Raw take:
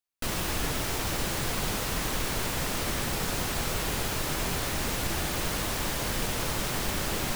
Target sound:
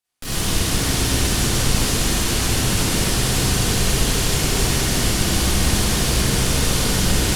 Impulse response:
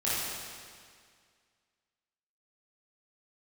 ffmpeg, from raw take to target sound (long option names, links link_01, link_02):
-filter_complex "[0:a]acrossover=split=350|3000[link_01][link_02][link_03];[link_02]acompressor=threshold=-50dB:ratio=2[link_04];[link_01][link_04][link_03]amix=inputs=3:normalize=0,volume=32.5dB,asoftclip=hard,volume=-32.5dB[link_05];[1:a]atrim=start_sample=2205,asetrate=25137,aresample=44100[link_06];[link_05][link_06]afir=irnorm=-1:irlink=0,volume=3.5dB"